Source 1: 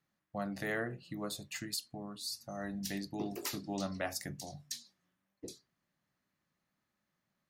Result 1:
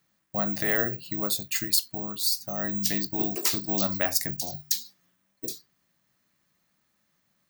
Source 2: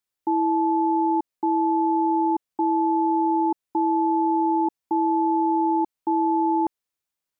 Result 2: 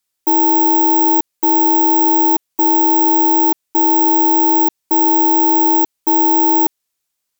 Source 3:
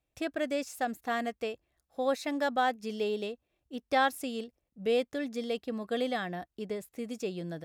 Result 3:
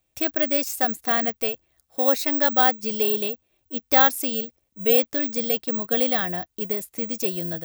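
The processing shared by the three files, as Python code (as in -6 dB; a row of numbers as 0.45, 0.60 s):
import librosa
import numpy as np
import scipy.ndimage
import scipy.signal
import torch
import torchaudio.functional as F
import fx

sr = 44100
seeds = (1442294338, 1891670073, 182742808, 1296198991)

y = fx.high_shelf(x, sr, hz=3400.0, db=8.0)
y = (np.kron(scipy.signal.resample_poly(y, 1, 2), np.eye(2)[0]) * 2)[:len(y)]
y = y * 10.0 ** (-3 / 20.0) / np.max(np.abs(y))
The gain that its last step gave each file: +7.0, +5.5, +6.0 dB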